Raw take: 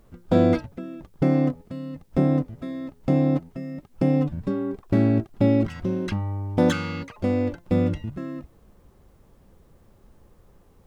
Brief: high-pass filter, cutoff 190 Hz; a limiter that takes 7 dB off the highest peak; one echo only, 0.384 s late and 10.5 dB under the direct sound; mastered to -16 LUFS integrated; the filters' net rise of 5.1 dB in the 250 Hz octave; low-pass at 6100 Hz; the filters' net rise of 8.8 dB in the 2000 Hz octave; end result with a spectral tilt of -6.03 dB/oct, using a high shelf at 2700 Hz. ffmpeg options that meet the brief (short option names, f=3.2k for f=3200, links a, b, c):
-af "highpass=190,lowpass=6.1k,equalizer=f=250:t=o:g=7,equalizer=f=2k:t=o:g=7.5,highshelf=f=2.7k:g=8,alimiter=limit=-10.5dB:level=0:latency=1,aecho=1:1:384:0.299,volume=7dB"